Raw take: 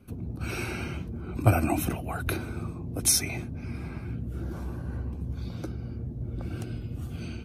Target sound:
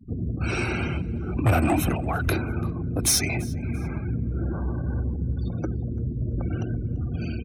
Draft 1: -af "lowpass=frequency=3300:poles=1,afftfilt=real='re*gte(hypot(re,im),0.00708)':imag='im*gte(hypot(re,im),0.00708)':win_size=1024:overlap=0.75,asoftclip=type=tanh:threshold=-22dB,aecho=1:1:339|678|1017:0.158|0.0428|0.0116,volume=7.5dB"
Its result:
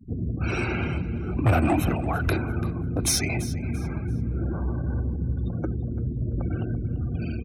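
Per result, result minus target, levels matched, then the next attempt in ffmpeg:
echo-to-direct +7.5 dB; 8,000 Hz band −2.5 dB
-af "lowpass=frequency=3300:poles=1,afftfilt=real='re*gte(hypot(re,im),0.00708)':imag='im*gte(hypot(re,im),0.00708)':win_size=1024:overlap=0.75,asoftclip=type=tanh:threshold=-22dB,aecho=1:1:339|678:0.0668|0.018,volume=7.5dB"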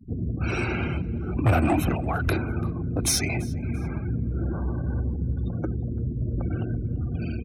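8,000 Hz band −2.5 dB
-af "lowpass=frequency=7000:poles=1,afftfilt=real='re*gte(hypot(re,im),0.00708)':imag='im*gte(hypot(re,im),0.00708)':win_size=1024:overlap=0.75,asoftclip=type=tanh:threshold=-22dB,aecho=1:1:339|678:0.0668|0.018,volume=7.5dB"

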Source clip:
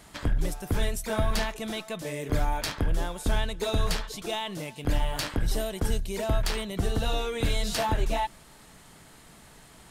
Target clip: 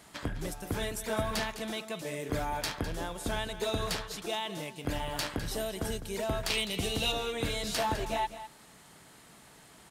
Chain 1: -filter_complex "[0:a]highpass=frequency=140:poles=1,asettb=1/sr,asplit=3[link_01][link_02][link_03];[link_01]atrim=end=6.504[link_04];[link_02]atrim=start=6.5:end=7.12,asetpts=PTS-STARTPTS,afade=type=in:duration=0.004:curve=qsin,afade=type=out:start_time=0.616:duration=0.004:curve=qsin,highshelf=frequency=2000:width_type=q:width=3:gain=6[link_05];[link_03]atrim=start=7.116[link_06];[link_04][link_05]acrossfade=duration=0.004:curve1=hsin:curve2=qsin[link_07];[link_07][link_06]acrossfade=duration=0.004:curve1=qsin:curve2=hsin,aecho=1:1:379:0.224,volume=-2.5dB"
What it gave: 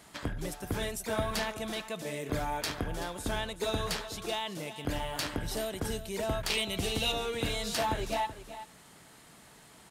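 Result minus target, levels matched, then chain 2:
echo 174 ms late
-filter_complex "[0:a]highpass=frequency=140:poles=1,asettb=1/sr,asplit=3[link_01][link_02][link_03];[link_01]atrim=end=6.504[link_04];[link_02]atrim=start=6.5:end=7.12,asetpts=PTS-STARTPTS,afade=type=in:duration=0.004:curve=qsin,afade=type=out:start_time=0.616:duration=0.004:curve=qsin,highshelf=frequency=2000:width_type=q:width=3:gain=6[link_05];[link_03]atrim=start=7.116[link_06];[link_04][link_05]acrossfade=duration=0.004:curve1=hsin:curve2=qsin[link_07];[link_07][link_06]acrossfade=duration=0.004:curve1=qsin:curve2=hsin,aecho=1:1:205:0.224,volume=-2.5dB"

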